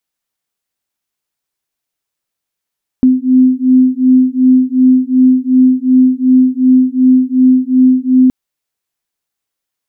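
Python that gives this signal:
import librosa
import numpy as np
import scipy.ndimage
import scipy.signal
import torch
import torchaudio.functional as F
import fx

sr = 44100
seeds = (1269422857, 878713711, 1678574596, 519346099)

y = fx.two_tone_beats(sr, length_s=5.27, hz=255.0, beat_hz=2.7, level_db=-9.0)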